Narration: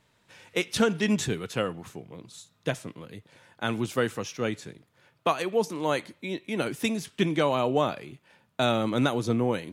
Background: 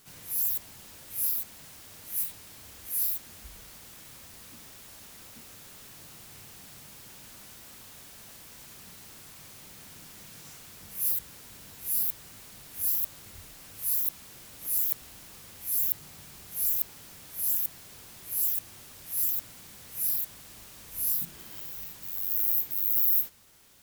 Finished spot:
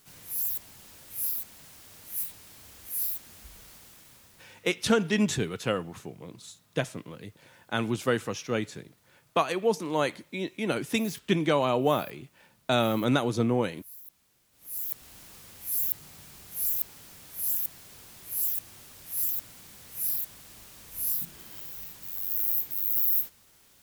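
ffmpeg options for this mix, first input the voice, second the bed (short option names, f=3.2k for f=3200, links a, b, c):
-filter_complex "[0:a]adelay=4100,volume=0dB[a];[1:a]volume=16.5dB,afade=t=out:st=3.71:d=0.98:silence=0.133352,afade=t=in:st=14.51:d=0.67:silence=0.11885[b];[a][b]amix=inputs=2:normalize=0"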